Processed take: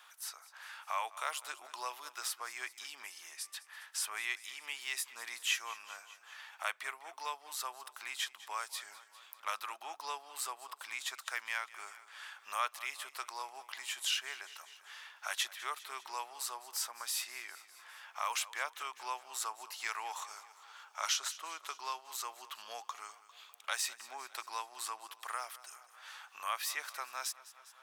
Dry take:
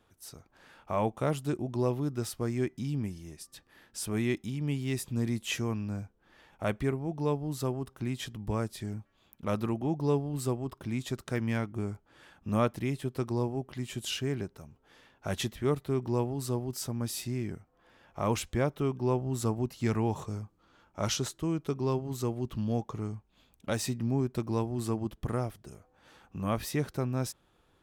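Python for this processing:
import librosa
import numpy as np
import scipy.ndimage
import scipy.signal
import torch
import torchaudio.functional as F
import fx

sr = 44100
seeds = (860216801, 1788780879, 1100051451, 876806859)

p1 = scipy.signal.sosfilt(scipy.signal.butter(4, 1000.0, 'highpass', fs=sr, output='sos'), x)
p2 = p1 + fx.echo_feedback(p1, sr, ms=200, feedback_pct=53, wet_db=-19.0, dry=0)
p3 = fx.band_squash(p2, sr, depth_pct=40)
y = p3 * librosa.db_to_amplitude(3.5)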